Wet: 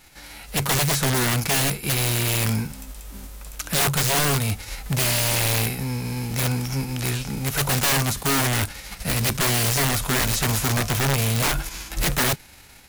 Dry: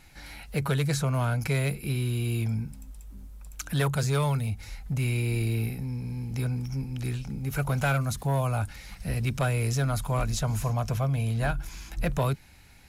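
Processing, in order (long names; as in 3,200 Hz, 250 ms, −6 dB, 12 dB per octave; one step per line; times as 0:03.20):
spectral envelope flattened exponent 0.6
automatic gain control gain up to 4 dB
wrap-around overflow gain 17 dB
level +1.5 dB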